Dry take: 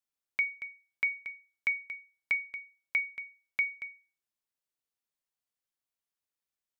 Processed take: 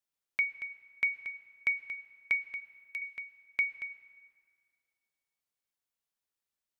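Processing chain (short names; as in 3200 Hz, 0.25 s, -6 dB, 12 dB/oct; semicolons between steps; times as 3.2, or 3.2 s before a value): 2.6–3.02 differentiator; plate-style reverb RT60 2.2 s, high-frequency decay 0.75×, pre-delay 95 ms, DRR 17.5 dB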